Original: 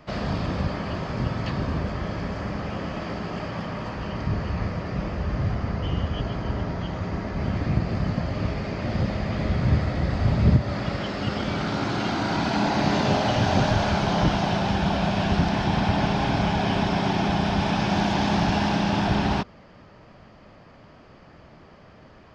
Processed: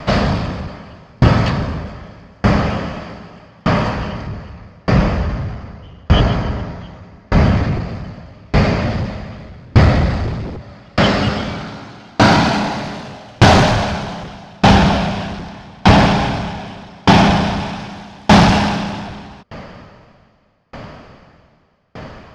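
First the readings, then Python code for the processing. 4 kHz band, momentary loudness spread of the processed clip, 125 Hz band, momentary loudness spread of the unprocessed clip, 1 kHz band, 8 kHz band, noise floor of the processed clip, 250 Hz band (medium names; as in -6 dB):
+9.0 dB, 22 LU, +8.0 dB, 8 LU, +9.0 dB, no reading, -49 dBFS, +7.5 dB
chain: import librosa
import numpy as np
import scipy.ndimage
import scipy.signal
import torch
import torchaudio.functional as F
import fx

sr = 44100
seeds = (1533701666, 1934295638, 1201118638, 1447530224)

y = fx.peak_eq(x, sr, hz=340.0, db=-5.0, octaves=0.38)
y = fx.fold_sine(y, sr, drive_db=11, ceiling_db=-6.5)
y = fx.tremolo_decay(y, sr, direction='decaying', hz=0.82, depth_db=36)
y = y * 10.0 ** (5.5 / 20.0)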